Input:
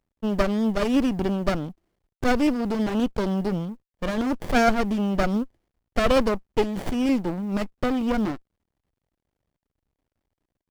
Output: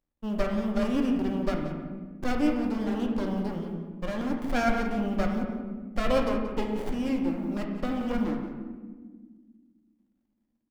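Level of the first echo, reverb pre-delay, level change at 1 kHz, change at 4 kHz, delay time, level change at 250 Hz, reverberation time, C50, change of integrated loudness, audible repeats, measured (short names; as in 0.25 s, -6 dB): -12.5 dB, 3 ms, -6.0 dB, -7.0 dB, 0.179 s, -4.0 dB, 1.5 s, 3.5 dB, -5.0 dB, 1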